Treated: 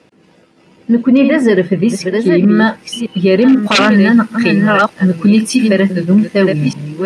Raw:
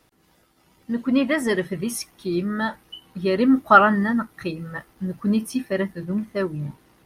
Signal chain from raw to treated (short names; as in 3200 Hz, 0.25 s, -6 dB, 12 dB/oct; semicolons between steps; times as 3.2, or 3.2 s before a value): reverse delay 0.612 s, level -8 dB; high shelf 2100 Hz -11 dB, from 2.57 s -5 dB, from 3.63 s +2.5 dB; wavefolder -10.5 dBFS; speaker cabinet 140–9200 Hz, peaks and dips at 200 Hz +4 dB, 490 Hz +4 dB, 800 Hz -4 dB, 1200 Hz -5 dB, 2600 Hz +7 dB, 4900 Hz +3 dB; maximiser +15.5 dB; gain -1 dB